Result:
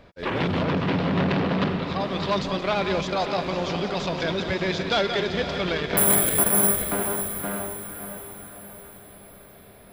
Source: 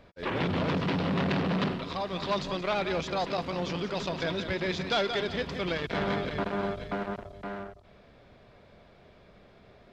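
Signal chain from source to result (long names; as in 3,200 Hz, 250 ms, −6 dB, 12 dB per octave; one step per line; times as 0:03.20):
0:00.63–0:01.99: low-pass filter 3,400 Hz → 5,000 Hz 6 dB per octave
0:05.97–0:06.82: bad sample-rate conversion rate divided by 4×, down filtered, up zero stuff
on a send: feedback delay with all-pass diffusion 560 ms, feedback 50%, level −8.5 dB
on the sum: level +4.5 dB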